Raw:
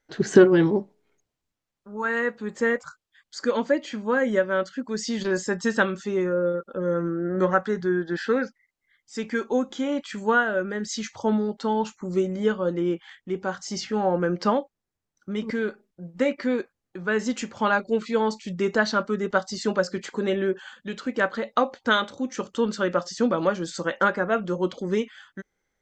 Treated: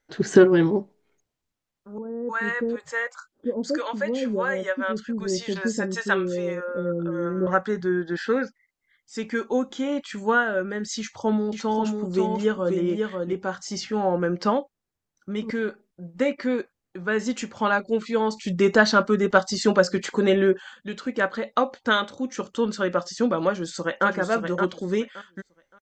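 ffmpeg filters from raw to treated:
-filter_complex "[0:a]asettb=1/sr,asplit=3[a][b][c];[a]atrim=end=1.984[d];[b]atrim=start=1.98:end=7.47,asetpts=PTS-STARTPTS,afade=t=in:d=0.004:c=qsin,afade=t=out:st=5.486:d=0.004:c=qsin,acrossover=split=560[e][f];[f]adelay=310[g];[e][g]amix=inputs=2:normalize=0,atrim=end_sample=242109[h];[c]atrim=start=7.466[i];[d][h]acrossfade=d=0.004:c1=hsin:c2=qsin[j];[j][i]acrossfade=d=0.004:c1=qsin:c2=hsin,asettb=1/sr,asplit=3[k][l][m];[k]atrim=end=10.984[n];[l]atrim=start=10.98:end=13.33,asetpts=PTS-STARTPTS,afade=t=in:d=0.004:c=qsin,afade=t=out:st=2.346:d=0.004:c=qsin,aecho=1:1:541:0.631,atrim=end_sample=103635[o];[m]atrim=start=13.326[p];[n][o]acrossfade=d=0.004:c1=hsin:c2=qsin[q];[q][p]acrossfade=d=0.004:c1=qsin:c2=hsin,asettb=1/sr,asplit=3[r][s][t];[r]atrim=end=18.374[u];[s]atrim=start=18.37:end=20.57,asetpts=PTS-STARTPTS,afade=t=in:d=0.004:c=qsin,afade=t=out:st=2.196:d=0.004:c=qsin,acontrast=36[v];[t]atrim=start=20.566[w];[u][v]acrossfade=d=0.004:c1=hsin:c2=qsin[x];[x][w]acrossfade=d=0.004:c1=qsin:c2=hsin,asplit=2[y][z];[z]afade=t=in:st=23.48:d=0.01,afade=t=out:st=24.07:d=0.01,aecho=0:1:570|1140|1710:0.501187|0.100237|0.0200475[aa];[y][aa]amix=inputs=2:normalize=0"

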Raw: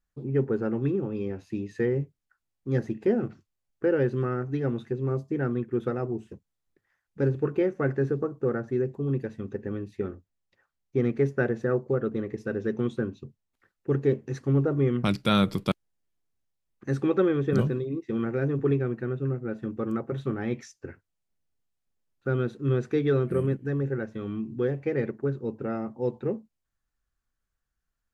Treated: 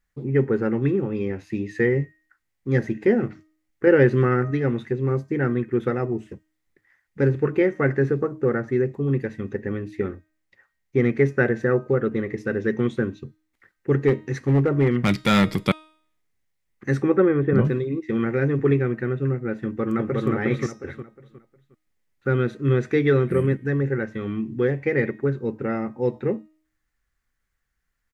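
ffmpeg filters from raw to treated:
-filter_complex "[0:a]asplit=3[a][b][c];[a]afade=t=out:st=14.07:d=0.02[d];[b]asoftclip=type=hard:threshold=-18dB,afade=t=in:st=14.07:d=0.02,afade=t=out:st=15.58:d=0.02[e];[c]afade=t=in:st=15.58:d=0.02[f];[d][e][f]amix=inputs=3:normalize=0,asettb=1/sr,asplit=3[g][h][i];[g]atrim=end=17.024[j];[h]atrim=start=17.02:end=17.65,asetpts=PTS-STARTPTS,afade=t=in:d=0.004:c=qsin,afade=t=out:st=0.626:d=0.004:c=qsin,lowpass=1.6k[k];[i]atrim=start=17.646[l];[j][k]acrossfade=d=0.004:c1=hsin:c2=qsin[m];[m][l]acrossfade=d=0.004:c1=qsin:c2=hsin,asplit=2[n][o];[o]afade=t=in:st=19.62:d=0.01,afade=t=out:st=20.3:d=0.01,aecho=0:1:360|720|1080|1440:0.841395|0.252419|0.0757256|0.0227177[p];[n][p]amix=inputs=2:normalize=0,asplit=3[q][r][s];[q]atrim=end=3.872[t];[r]atrim=start=3.868:end=4.512,asetpts=PTS-STARTPTS,volume=3.5dB[u];[s]atrim=start=4.508[v];[t][u]acrossfade=d=0.004:c1=hsin:c2=hsin[w];[w][v]acrossfade=d=0.004:c1=hsin:c2=hsin,equalizer=f=2k:w=3.3:g=10.5,bandreject=f=660:w=16,bandreject=f=312.3:t=h:w=4,bandreject=f=624.6:t=h:w=4,bandreject=f=936.9:t=h:w=4,bandreject=f=1.2492k:t=h:w=4,bandreject=f=1.5615k:t=h:w=4,bandreject=f=1.8738k:t=h:w=4,bandreject=f=2.1861k:t=h:w=4,bandreject=f=2.4984k:t=h:w=4,bandreject=f=2.8107k:t=h:w=4,bandreject=f=3.123k:t=h:w=4,bandreject=f=3.4353k:t=h:w=4,bandreject=f=3.7476k:t=h:w=4,bandreject=f=4.0599k:t=h:w=4,bandreject=f=4.3722k:t=h:w=4,bandreject=f=4.6845k:t=h:w=4,bandreject=f=4.9968k:t=h:w=4,bandreject=f=5.3091k:t=h:w=4,bandreject=f=5.6214k:t=h:w=4,bandreject=f=5.9337k:t=h:w=4,bandreject=f=6.246k:t=h:w=4,bandreject=f=6.5583k:t=h:w=4,bandreject=f=6.8706k:t=h:w=4,bandreject=f=7.1829k:t=h:w=4,bandreject=f=7.4952k:t=h:w=4,bandreject=f=7.8075k:t=h:w=4,bandreject=f=8.1198k:t=h:w=4,bandreject=f=8.4321k:t=h:w=4,bandreject=f=8.7444k:t=h:w=4,bandreject=f=9.0567k:t=h:w=4,bandreject=f=9.369k:t=h:w=4,bandreject=f=9.6813k:t=h:w=4,bandreject=f=9.9936k:t=h:w=4,bandreject=f=10.3059k:t=h:w=4,bandreject=f=10.6182k:t=h:w=4,bandreject=f=10.9305k:t=h:w=4,volume=5dB"

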